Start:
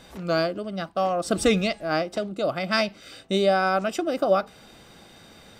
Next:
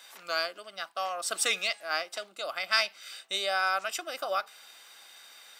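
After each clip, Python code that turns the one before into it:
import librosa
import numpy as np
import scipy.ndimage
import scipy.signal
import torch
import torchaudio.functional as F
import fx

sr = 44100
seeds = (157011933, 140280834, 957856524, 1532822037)

y = scipy.signal.sosfilt(scipy.signal.butter(2, 1200.0, 'highpass', fs=sr, output='sos'), x)
y = fx.high_shelf(y, sr, hz=10000.0, db=8.5)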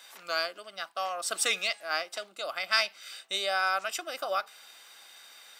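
y = x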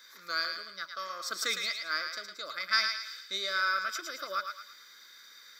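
y = fx.fixed_phaser(x, sr, hz=2800.0, stages=6)
y = fx.echo_thinned(y, sr, ms=110, feedback_pct=45, hz=920.0, wet_db=-5)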